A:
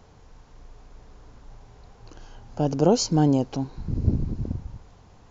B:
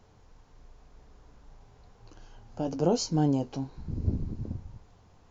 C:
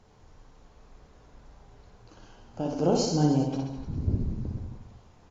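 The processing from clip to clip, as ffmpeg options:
ffmpeg -i in.wav -af "flanger=delay=9.4:depth=4.8:regen=-51:speed=0.43:shape=sinusoidal,volume=-2.5dB" out.wav
ffmpeg -i in.wav -filter_complex "[0:a]asplit=2[link_01][link_02];[link_02]aecho=0:1:60|129|208.4|299.6|404.5:0.631|0.398|0.251|0.158|0.1[link_03];[link_01][link_03]amix=inputs=2:normalize=0" -ar 32000 -c:a aac -b:a 32k out.aac

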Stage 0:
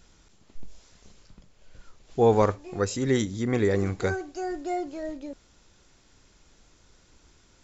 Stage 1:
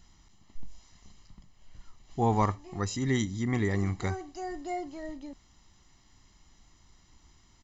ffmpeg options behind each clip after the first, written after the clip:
ffmpeg -i in.wav -af "aecho=1:1:1:0.68,volume=-4.5dB" out.wav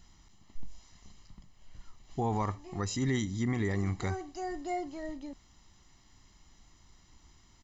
ffmpeg -i in.wav -af "alimiter=limit=-21dB:level=0:latency=1:release=79" out.wav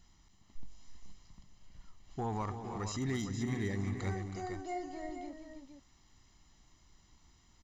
ffmpeg -i in.wav -af "asoftclip=type=hard:threshold=-24dB,aecho=1:1:222|321|463:0.141|0.335|0.398,volume=-5dB" out.wav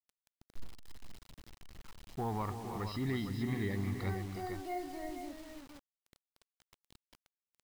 ffmpeg -i in.wav -af "aresample=11025,aresample=44100,acrusher=bits=8:mix=0:aa=0.000001" out.wav

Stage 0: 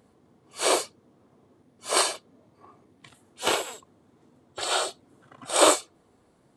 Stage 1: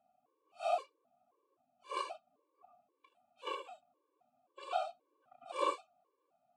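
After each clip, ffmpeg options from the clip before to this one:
ffmpeg -i in.wav -filter_complex "[0:a]asplit=3[link_01][link_02][link_03];[link_01]bandpass=frequency=730:width_type=q:width=8,volume=0dB[link_04];[link_02]bandpass=frequency=1090:width_type=q:width=8,volume=-6dB[link_05];[link_03]bandpass=frequency=2440:width_type=q:width=8,volume=-9dB[link_06];[link_04][link_05][link_06]amix=inputs=3:normalize=0,afftfilt=real='re*gt(sin(2*PI*1.9*pts/sr)*(1-2*mod(floor(b*sr/1024/300),2)),0)':imag='im*gt(sin(2*PI*1.9*pts/sr)*(1-2*mod(floor(b*sr/1024/300),2)),0)':win_size=1024:overlap=0.75" out.wav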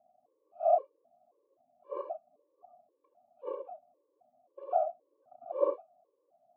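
ffmpeg -i in.wav -af "lowpass=frequency=620:width_type=q:width=3.6" out.wav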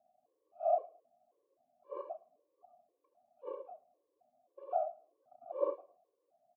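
ffmpeg -i in.wav -af "aecho=1:1:109|218:0.0708|0.0191,volume=-5dB" out.wav

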